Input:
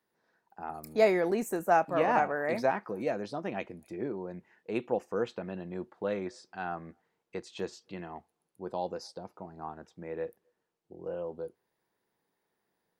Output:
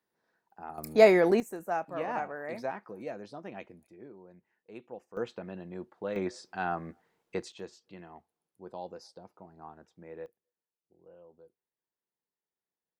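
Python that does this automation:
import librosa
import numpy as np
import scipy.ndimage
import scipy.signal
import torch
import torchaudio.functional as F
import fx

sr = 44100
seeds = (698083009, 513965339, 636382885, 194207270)

y = fx.gain(x, sr, db=fx.steps((0.0, -3.5), (0.78, 5.0), (1.4, -7.5), (3.87, -14.0), (5.17, -3.0), (6.16, 4.0), (7.52, -7.0), (10.26, -18.0)))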